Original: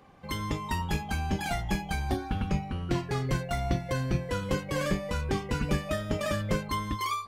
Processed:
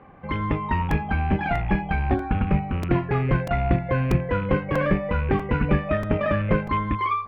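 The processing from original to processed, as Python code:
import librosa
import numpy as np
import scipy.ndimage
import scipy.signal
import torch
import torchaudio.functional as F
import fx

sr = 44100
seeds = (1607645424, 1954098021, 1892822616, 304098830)

y = fx.rattle_buzz(x, sr, strikes_db=-31.0, level_db=-33.0)
y = scipy.signal.sosfilt(scipy.signal.butter(4, 2300.0, 'lowpass', fs=sr, output='sos'), y)
y = fx.buffer_crackle(y, sr, first_s=0.91, period_s=0.64, block=128, kind='repeat')
y = y * librosa.db_to_amplitude(7.5)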